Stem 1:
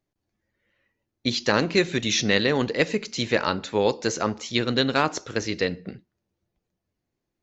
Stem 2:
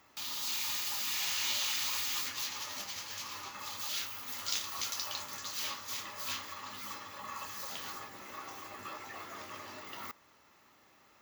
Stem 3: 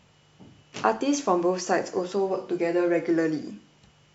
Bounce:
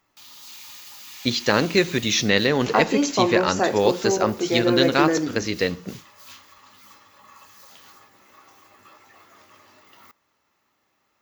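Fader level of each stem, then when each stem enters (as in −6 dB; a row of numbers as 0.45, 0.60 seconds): +2.0, −6.5, +2.5 decibels; 0.00, 0.00, 1.90 seconds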